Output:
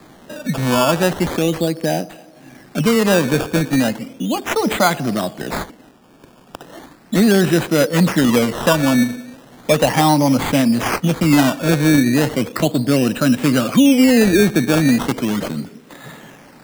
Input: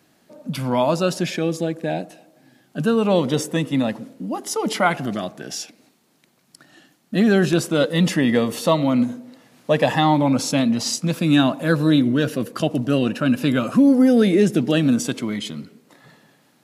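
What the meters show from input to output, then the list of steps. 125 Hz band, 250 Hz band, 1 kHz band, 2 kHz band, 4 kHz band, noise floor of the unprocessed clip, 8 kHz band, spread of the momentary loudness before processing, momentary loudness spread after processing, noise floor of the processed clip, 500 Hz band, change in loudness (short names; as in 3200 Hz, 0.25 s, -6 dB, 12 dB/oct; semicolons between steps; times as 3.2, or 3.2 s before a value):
+4.0 dB, +3.5 dB, +4.0 dB, +5.5 dB, +4.0 dB, -61 dBFS, +5.0 dB, 13 LU, 11 LU, -46 dBFS, +3.0 dB, +3.5 dB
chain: decimation with a swept rate 15×, swing 100% 0.36 Hz; three-band squash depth 40%; gain +3.5 dB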